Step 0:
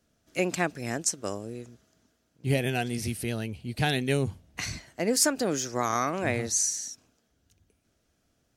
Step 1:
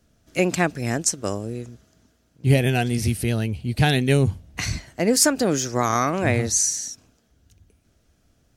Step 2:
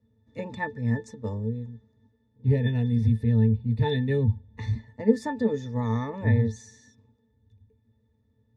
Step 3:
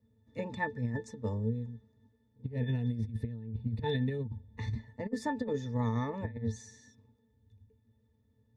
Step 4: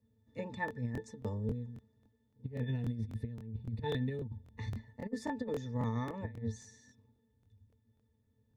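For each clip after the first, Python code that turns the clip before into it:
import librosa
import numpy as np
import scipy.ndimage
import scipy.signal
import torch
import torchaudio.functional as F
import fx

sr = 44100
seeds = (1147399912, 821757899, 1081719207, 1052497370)

y1 = fx.low_shelf(x, sr, hz=130.0, db=9.5)
y1 = y1 * librosa.db_to_amplitude(5.5)
y2 = fx.octave_resonator(y1, sr, note='A', decay_s=0.12)
y2 = y2 * librosa.db_to_amplitude(5.0)
y3 = fx.over_compress(y2, sr, threshold_db=-26.0, ratio=-0.5)
y3 = y3 * librosa.db_to_amplitude(-6.0)
y4 = fx.buffer_crackle(y3, sr, first_s=0.66, period_s=0.27, block=1024, kind='repeat')
y4 = y4 * librosa.db_to_amplitude(-3.5)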